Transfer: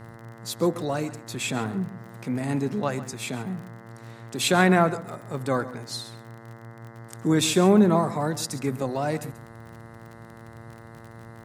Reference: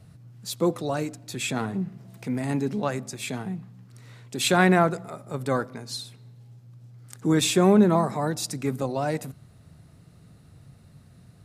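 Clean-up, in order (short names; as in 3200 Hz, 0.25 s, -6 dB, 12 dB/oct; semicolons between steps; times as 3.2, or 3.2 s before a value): de-click; de-hum 114.2 Hz, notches 18; inverse comb 0.135 s -15.5 dB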